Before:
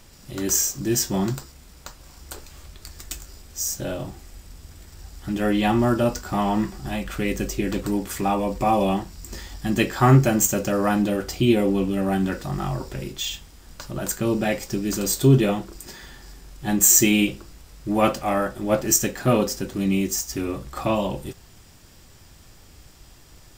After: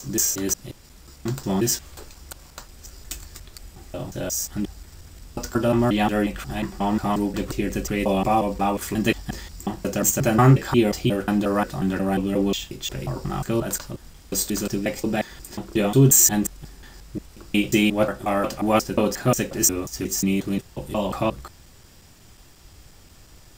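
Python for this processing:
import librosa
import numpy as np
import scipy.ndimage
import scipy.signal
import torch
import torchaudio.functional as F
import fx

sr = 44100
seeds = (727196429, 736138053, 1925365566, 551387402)

y = fx.block_reorder(x, sr, ms=179.0, group=5)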